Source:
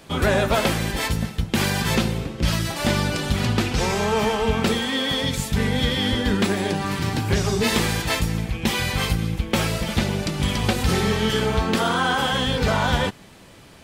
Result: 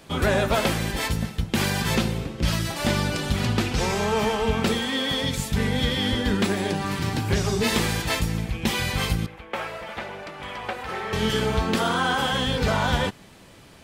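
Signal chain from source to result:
0:09.26–0:11.13: three-way crossover with the lows and the highs turned down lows −20 dB, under 480 Hz, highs −18 dB, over 2,400 Hz
level −2 dB

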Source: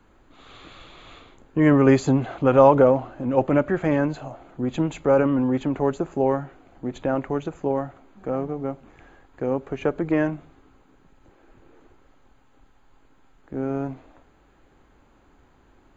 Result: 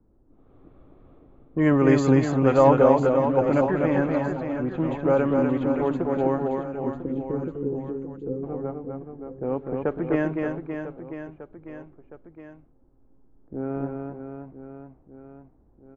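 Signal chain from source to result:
low-pass that shuts in the quiet parts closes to 410 Hz, open at −14.5 dBFS
gain on a spectral selection 0:06.78–0:08.44, 520–5,600 Hz −28 dB
reverse bouncing-ball delay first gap 250 ms, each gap 1.3×, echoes 5
level −3 dB

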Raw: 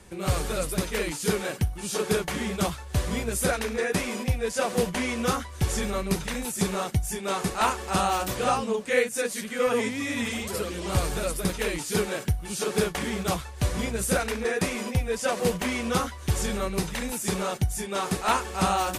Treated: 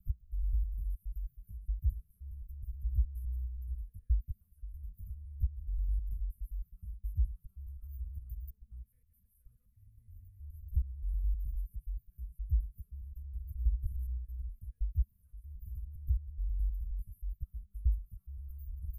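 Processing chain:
slices reordered back to front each 105 ms, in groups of 3
inverse Chebyshev band-stop filter 280–7,600 Hz, stop band 70 dB
level +2 dB

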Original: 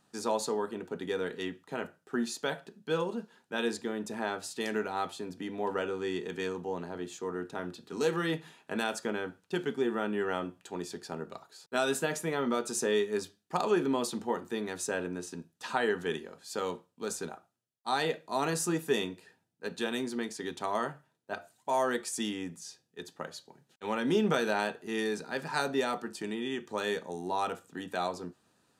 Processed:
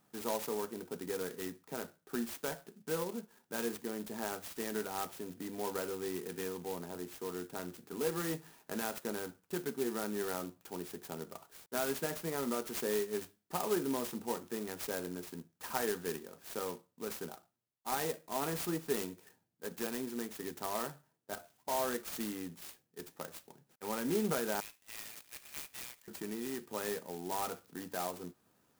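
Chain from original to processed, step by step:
0:24.60–0:26.08: elliptic high-pass filter 2,100 Hz, stop band 40 dB
in parallel at −2 dB: downward compressor, threshold −44 dBFS, peak gain reduction 20 dB
on the sum: converter with an unsteady clock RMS 0.086 ms
level −6.5 dB

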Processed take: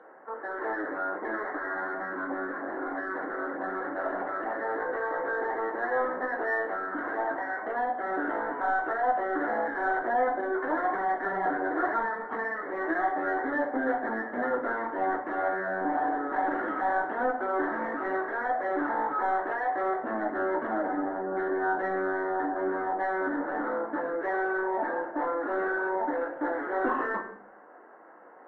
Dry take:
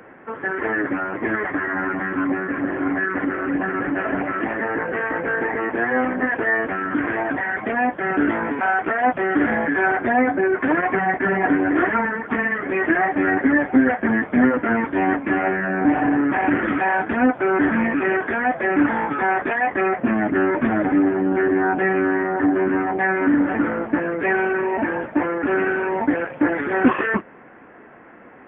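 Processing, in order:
high-pass filter 590 Hz 12 dB per octave
gate on every frequency bin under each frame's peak −30 dB strong
in parallel at −7 dB: soft clipping −24 dBFS, distortion −10 dB
on the sum: moving average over 18 samples
rectangular room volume 110 cubic metres, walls mixed, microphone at 0.64 metres
level −6 dB

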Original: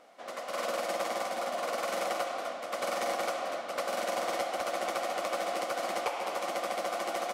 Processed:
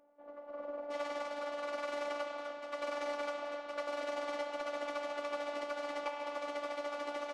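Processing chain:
Bessel low-pass filter 600 Hz, order 2, from 0:00.90 3,800 Hz
phases set to zero 290 Hz
level −3.5 dB

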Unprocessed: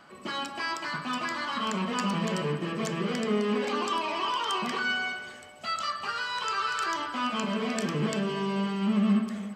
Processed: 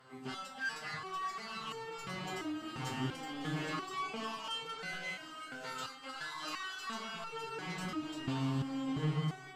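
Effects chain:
dynamic equaliser 170 Hz, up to −5 dB, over −44 dBFS, Q 5.6
soft clipping −29 dBFS, distortion −11 dB
on a send: feedback delay with all-pass diffusion 694 ms, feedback 44%, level −7.5 dB
on the sum: phase-vocoder pitch shift with formants kept −6.5 semitones
step-sequenced resonator 2.9 Hz 130–450 Hz
level +7 dB

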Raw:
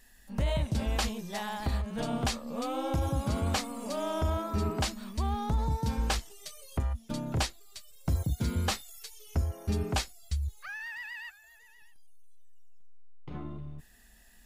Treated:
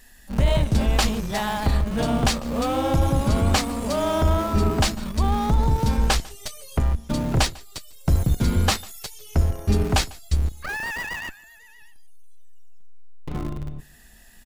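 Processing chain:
sub-octave generator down 2 octaves, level −5 dB
in parallel at −11 dB: comparator with hysteresis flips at −37.5 dBFS
on the sum: single-tap delay 148 ms −23 dB
level +8 dB

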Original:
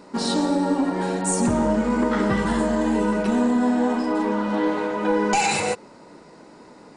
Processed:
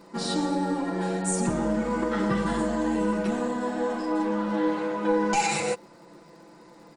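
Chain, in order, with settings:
comb filter 5.9 ms, depth 73%
surface crackle 85 per second −44 dBFS
level −6 dB

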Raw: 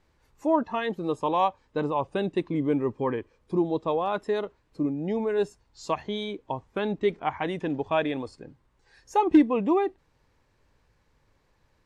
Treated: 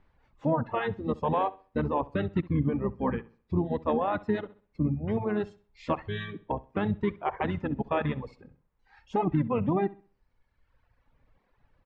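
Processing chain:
pitch-shifted copies added −12 semitones −2 dB, −4 semitones −11 dB
low-pass filter 2,600 Hz 12 dB per octave
parametric band 360 Hz −4.5 dB 0.8 octaves
brickwall limiter −16.5 dBFS, peak gain reduction 11.5 dB
on a send: flutter between parallel walls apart 11.2 metres, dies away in 0.4 s
on the sum: reverb reduction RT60 1.3 s

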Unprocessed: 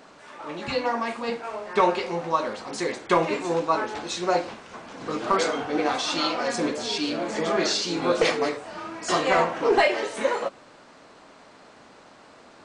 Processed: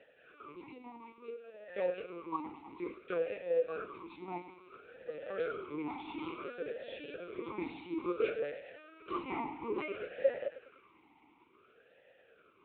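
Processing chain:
0:00.66–0:01.61: parametric band 1,500 Hz −10 dB 2.1 octaves
in parallel at 0 dB: upward compression, threshold −27 dBFS
on the sum: hard clipping −6 dBFS, distortion −26 dB
floating-point word with a short mantissa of 4 bits
dead-zone distortion −38 dBFS
on a send: feedback echo with a high-pass in the loop 103 ms, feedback 79%, high-pass 460 Hz, level −13 dB
on the sum: linear-prediction vocoder at 8 kHz pitch kept
formant filter swept between two vowels e-u 0.58 Hz
level −7.5 dB

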